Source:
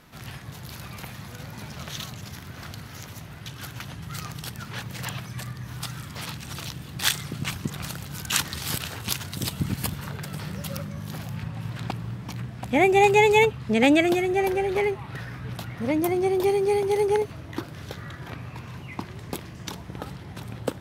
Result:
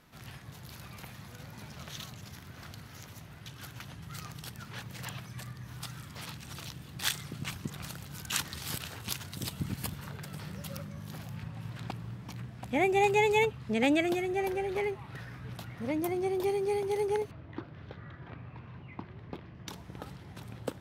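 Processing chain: 17.31–19.68 s: distance through air 320 m; trim -8 dB

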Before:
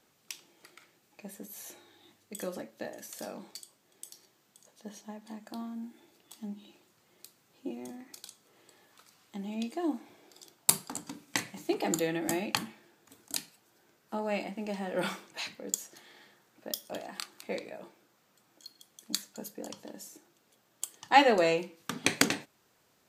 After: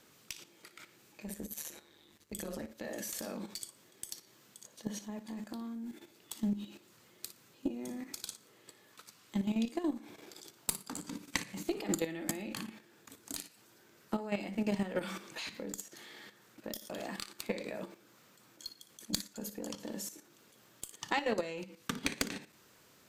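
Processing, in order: 1.27–2.71 s: AM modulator 150 Hz, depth 70%; compression 4:1, threshold -38 dBFS, peak gain reduction 19 dB; peaking EQ 750 Hz -6 dB 0.5 oct; on a send: flutter echo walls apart 10 m, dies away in 0.27 s; on the sum: dynamic bell 200 Hz, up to +3 dB, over -55 dBFS, Q 1.7; Chebyshev shaper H 3 -39 dB, 5 -13 dB, 6 -18 dB, 7 -32 dB, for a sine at -15 dBFS; level held to a coarse grid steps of 11 dB; trim +3 dB

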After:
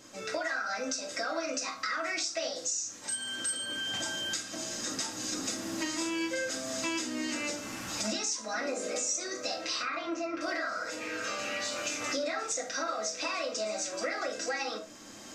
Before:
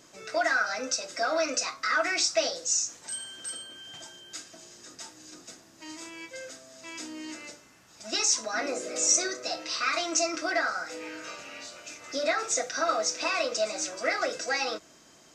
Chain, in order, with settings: recorder AGC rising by 11 dB/s; 9.82–10.41 s: low-pass 2.2 kHz 12 dB/octave; reverberation RT60 0.30 s, pre-delay 4 ms, DRR 2.5 dB; compression 3:1, threshold -33 dBFS, peak gain reduction 12 dB; 10.50–11.08 s: spectral replace 430–1000 Hz both

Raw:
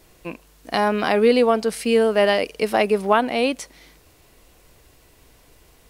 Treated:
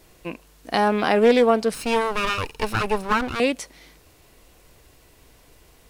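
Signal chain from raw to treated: 1.74–3.40 s: comb filter that takes the minimum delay 0.75 ms; loudspeaker Doppler distortion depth 0.2 ms

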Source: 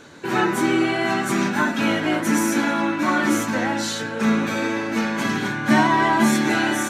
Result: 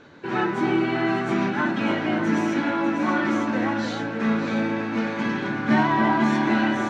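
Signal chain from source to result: in parallel at -8 dB: companded quantiser 4-bit; on the sum: distance through air 190 m; echo whose repeats swap between lows and highs 297 ms, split 910 Hz, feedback 65%, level -4.5 dB; trim -6 dB

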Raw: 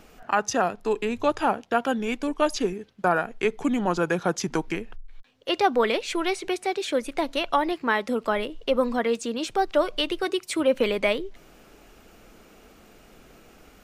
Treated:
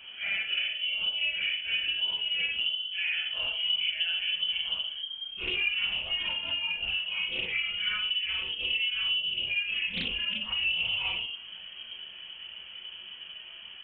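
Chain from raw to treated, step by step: phase randomisation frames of 200 ms; peaking EQ 550 Hz -7 dB 2.6 oct; reverberation RT60 0.45 s, pre-delay 3 ms, DRR 6.5 dB; frequency inversion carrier 3.2 kHz; dynamic bell 1.3 kHz, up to -6 dB, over -31 dBFS, Q 0.94; compression 2.5:1, threshold -33 dBFS, peak gain reduction 15.5 dB; loudspeaker Doppler distortion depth 0.33 ms

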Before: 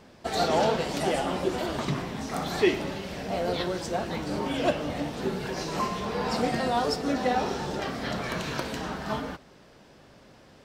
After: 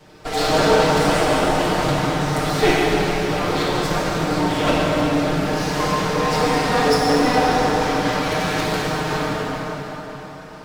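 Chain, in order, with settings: comb filter that takes the minimum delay 6.5 ms; plate-style reverb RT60 4.7 s, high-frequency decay 0.7×, DRR -6 dB; trim +4.5 dB

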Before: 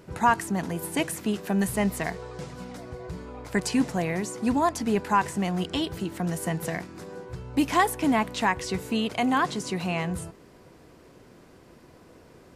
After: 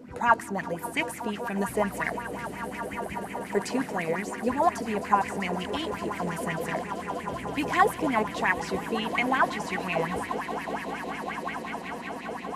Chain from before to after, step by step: band noise 190–290 Hz -41 dBFS; echo with a slow build-up 194 ms, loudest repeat 8, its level -16 dB; sweeping bell 5.6 Hz 460–2400 Hz +16 dB; trim -7.5 dB

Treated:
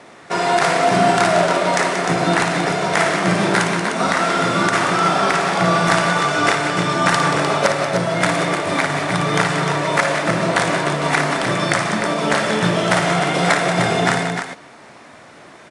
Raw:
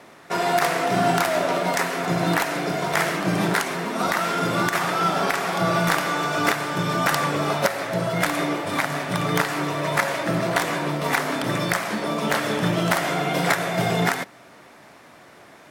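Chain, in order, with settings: multi-tap echo 56/182/303 ms -7/-9/-7 dB; trim +4 dB; AAC 96 kbps 22.05 kHz

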